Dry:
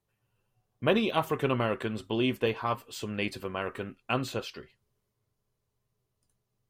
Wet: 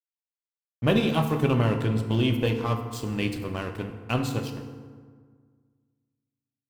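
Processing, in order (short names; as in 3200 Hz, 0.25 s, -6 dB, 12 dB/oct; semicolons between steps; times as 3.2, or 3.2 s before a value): tone controls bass +11 dB, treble +7 dB; crossover distortion -40.5 dBFS; FDN reverb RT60 1.7 s, low-frequency decay 1.25×, high-frequency decay 0.55×, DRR 5 dB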